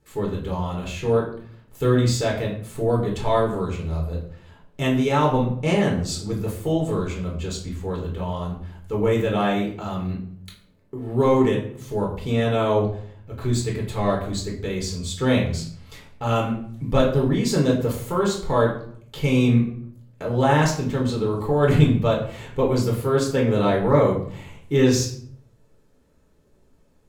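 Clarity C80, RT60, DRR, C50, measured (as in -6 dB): 10.0 dB, 0.60 s, -2.5 dB, 6.5 dB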